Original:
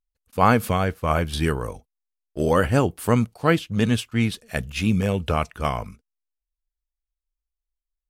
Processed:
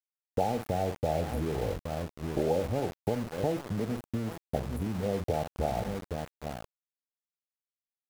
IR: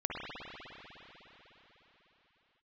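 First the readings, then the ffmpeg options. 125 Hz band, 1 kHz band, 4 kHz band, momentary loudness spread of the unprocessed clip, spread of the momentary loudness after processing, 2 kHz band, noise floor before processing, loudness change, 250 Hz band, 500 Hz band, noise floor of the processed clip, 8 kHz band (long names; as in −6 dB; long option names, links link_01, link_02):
−10.0 dB, −10.0 dB, −13.0 dB, 11 LU, 7 LU, −17.0 dB, below −85 dBFS, −10.0 dB, −10.5 dB, −6.0 dB, below −85 dBFS, −10.5 dB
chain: -filter_complex "[0:a]asplit=2[link_01][link_02];[link_02]lowshelf=frequency=620:width_type=q:width=1.5:gain=-12.5[link_03];[1:a]atrim=start_sample=2205,atrim=end_sample=6174,adelay=84[link_04];[link_03][link_04]afir=irnorm=-1:irlink=0,volume=-18.5dB[link_05];[link_01][link_05]amix=inputs=2:normalize=0,afwtdn=0.0282,asplit=2[link_06][link_07];[link_07]adelay=45,volume=-11dB[link_08];[link_06][link_08]amix=inputs=2:normalize=0,asplit=2[link_09][link_10];[link_10]adelay=816.3,volume=-18dB,highshelf=frequency=4000:gain=-18.4[link_11];[link_09][link_11]amix=inputs=2:normalize=0,acompressor=threshold=-28dB:ratio=12,afftfilt=real='re*(1-between(b*sr/4096,890,10000))':imag='im*(1-between(b*sr/4096,890,10000))':win_size=4096:overlap=0.75,acrossover=split=430|3000[link_12][link_13][link_14];[link_12]acompressor=threshold=-38dB:ratio=6[link_15];[link_15][link_13][link_14]amix=inputs=3:normalize=0,aeval=exprs='val(0)*gte(abs(val(0)),0.00708)':channel_layout=same,volume=7dB"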